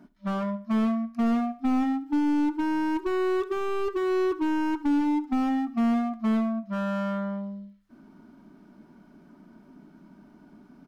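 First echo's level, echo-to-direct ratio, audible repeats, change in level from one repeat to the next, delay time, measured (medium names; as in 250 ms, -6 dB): -18.5 dB, -18.0 dB, 2, -8.5 dB, 70 ms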